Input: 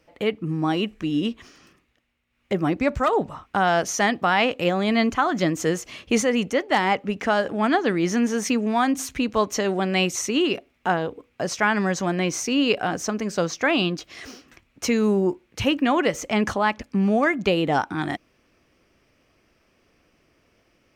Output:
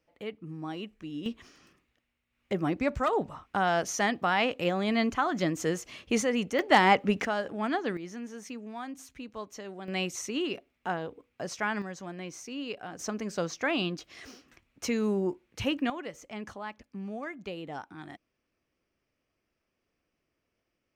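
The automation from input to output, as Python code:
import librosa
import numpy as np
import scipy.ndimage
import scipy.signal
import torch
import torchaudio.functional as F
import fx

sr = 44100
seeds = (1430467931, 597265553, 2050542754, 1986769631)

y = fx.gain(x, sr, db=fx.steps((0.0, -14.5), (1.26, -6.5), (6.59, 0.0), (7.25, -9.5), (7.97, -18.5), (9.88, -10.0), (11.82, -16.5), (12.99, -8.0), (15.9, -18.0)))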